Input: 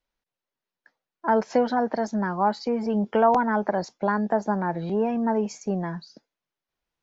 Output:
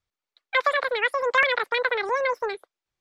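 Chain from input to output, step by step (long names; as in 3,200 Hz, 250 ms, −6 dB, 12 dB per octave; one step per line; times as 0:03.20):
low-pass filter 3,100 Hz 24 dB per octave
wrong playback speed 33 rpm record played at 78 rpm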